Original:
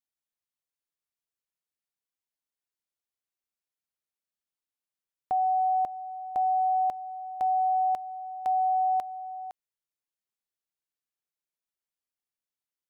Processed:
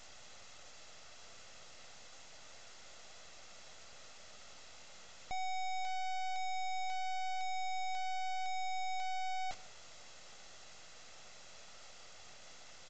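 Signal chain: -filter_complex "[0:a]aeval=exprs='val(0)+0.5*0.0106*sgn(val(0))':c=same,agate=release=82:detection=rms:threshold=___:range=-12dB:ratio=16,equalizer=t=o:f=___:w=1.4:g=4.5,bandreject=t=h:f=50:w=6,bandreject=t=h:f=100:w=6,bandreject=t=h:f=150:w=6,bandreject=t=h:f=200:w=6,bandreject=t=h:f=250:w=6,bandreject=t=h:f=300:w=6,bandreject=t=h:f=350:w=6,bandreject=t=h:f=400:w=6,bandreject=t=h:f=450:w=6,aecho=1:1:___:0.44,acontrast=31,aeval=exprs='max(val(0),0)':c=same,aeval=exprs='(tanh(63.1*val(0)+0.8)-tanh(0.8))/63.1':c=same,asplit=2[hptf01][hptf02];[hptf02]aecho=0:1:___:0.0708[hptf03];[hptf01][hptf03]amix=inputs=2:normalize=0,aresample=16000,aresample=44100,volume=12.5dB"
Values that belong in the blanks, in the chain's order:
-41dB, 590, 1.5, 153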